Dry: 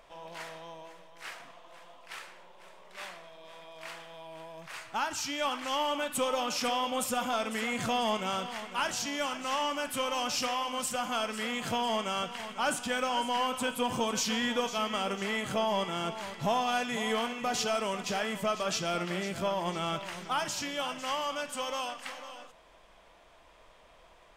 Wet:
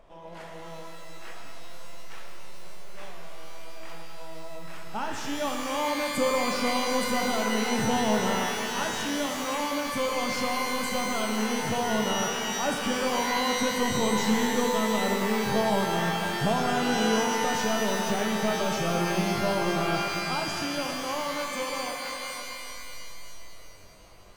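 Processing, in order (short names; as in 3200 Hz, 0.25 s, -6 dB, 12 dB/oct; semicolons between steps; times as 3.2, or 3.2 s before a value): tilt shelf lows +7.5 dB, about 760 Hz; shimmer reverb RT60 2.5 s, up +12 st, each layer -2 dB, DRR 3 dB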